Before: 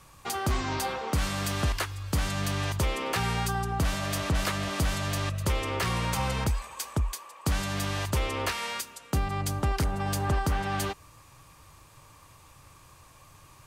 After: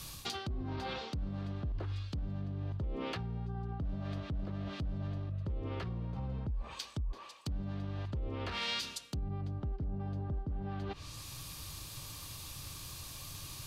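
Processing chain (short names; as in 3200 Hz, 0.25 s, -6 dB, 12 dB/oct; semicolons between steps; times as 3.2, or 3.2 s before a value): graphic EQ 500/1000/2000/4000/8000 Hz -5/-8/-6/+6/-8 dB; treble ducked by the level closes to 560 Hz, closed at -26 dBFS; reverse; compressor 8:1, threshold -41 dBFS, peak gain reduction 17 dB; reverse; limiter -38.5 dBFS, peak gain reduction 8.5 dB; high shelf 4600 Hz +12 dB; gain +7.5 dB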